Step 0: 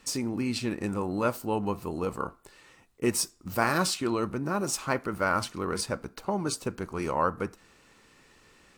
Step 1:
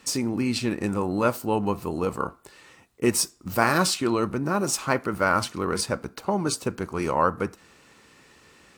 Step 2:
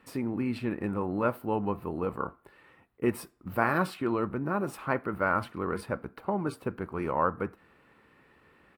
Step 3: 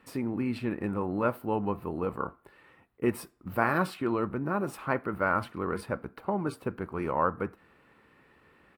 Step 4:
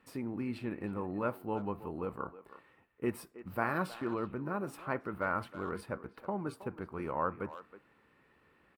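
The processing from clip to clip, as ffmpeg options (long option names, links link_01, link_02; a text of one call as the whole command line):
ffmpeg -i in.wav -af "highpass=57,volume=4.5dB" out.wav
ffmpeg -i in.wav -af "firequalizer=gain_entry='entry(1700,0);entry(6300,-25);entry(11000,-9)':delay=0.05:min_phase=1,volume=-5dB" out.wav
ffmpeg -i in.wav -af anull out.wav
ffmpeg -i in.wav -filter_complex "[0:a]asplit=2[link_01][link_02];[link_02]adelay=320,highpass=300,lowpass=3400,asoftclip=type=hard:threshold=-18dB,volume=-14dB[link_03];[link_01][link_03]amix=inputs=2:normalize=0,volume=-6.5dB" out.wav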